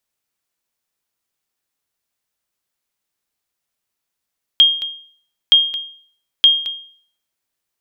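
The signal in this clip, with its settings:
ping with an echo 3,230 Hz, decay 0.52 s, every 0.92 s, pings 3, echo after 0.22 s, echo −13 dB −3 dBFS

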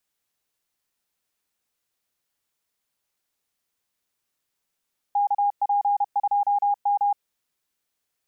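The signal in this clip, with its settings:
Morse code "KP2M" 31 words per minute 814 Hz −18 dBFS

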